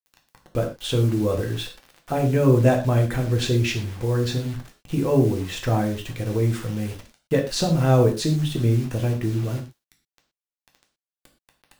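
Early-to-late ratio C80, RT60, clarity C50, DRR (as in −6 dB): 14.5 dB, non-exponential decay, 10.0 dB, 2.0 dB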